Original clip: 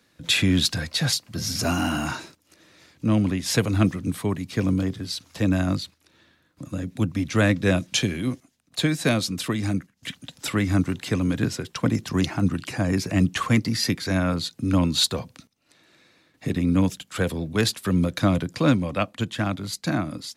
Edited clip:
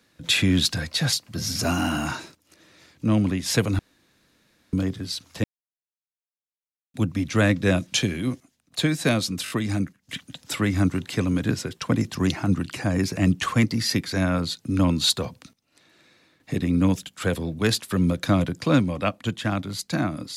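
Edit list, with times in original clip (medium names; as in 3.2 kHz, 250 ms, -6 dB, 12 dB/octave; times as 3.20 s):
3.79–4.73 s: room tone
5.44–6.94 s: mute
9.44 s: stutter 0.02 s, 4 plays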